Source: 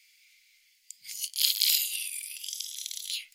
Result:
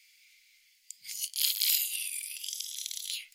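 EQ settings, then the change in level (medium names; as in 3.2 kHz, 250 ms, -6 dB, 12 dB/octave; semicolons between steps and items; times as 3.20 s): dynamic bell 4.3 kHz, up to -5 dB, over -36 dBFS, Q 0.88; 0.0 dB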